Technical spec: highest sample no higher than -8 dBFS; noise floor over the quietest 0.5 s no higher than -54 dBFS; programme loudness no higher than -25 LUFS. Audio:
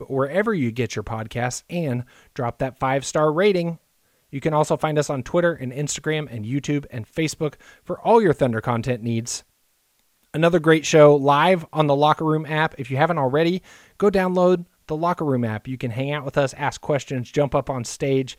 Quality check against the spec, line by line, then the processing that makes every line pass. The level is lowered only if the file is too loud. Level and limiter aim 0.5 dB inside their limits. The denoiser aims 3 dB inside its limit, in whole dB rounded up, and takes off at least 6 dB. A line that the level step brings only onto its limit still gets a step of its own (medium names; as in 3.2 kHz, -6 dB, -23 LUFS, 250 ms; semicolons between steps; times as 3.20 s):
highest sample -2.5 dBFS: fail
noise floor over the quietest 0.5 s -66 dBFS: pass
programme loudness -21.5 LUFS: fail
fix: trim -4 dB; peak limiter -8.5 dBFS